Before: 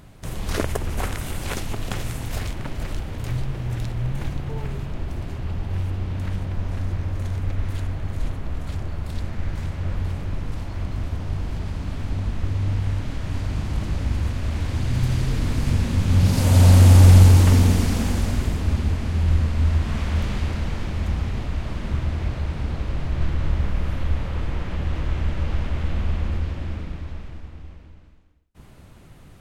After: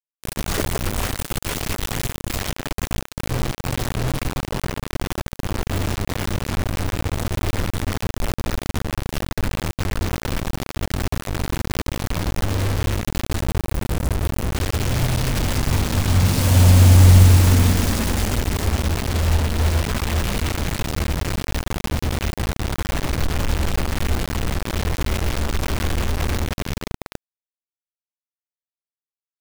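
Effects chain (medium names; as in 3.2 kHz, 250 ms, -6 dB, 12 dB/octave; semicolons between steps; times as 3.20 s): time-frequency box 13.42–14.55 s, 200–7700 Hz -12 dB; bit crusher 4-bit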